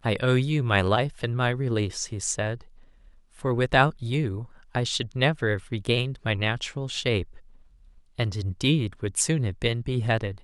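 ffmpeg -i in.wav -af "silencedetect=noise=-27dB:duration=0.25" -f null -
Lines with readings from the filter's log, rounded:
silence_start: 2.55
silence_end: 3.45 | silence_duration: 0.90
silence_start: 4.42
silence_end: 4.75 | silence_duration: 0.34
silence_start: 7.23
silence_end: 8.19 | silence_duration: 0.96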